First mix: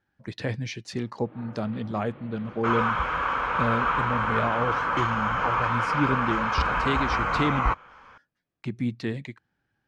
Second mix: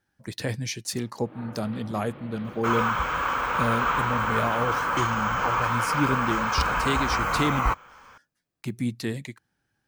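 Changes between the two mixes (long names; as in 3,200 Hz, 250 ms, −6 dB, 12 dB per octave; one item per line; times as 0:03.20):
first sound +3.0 dB
master: remove low-pass filter 3,500 Hz 12 dB per octave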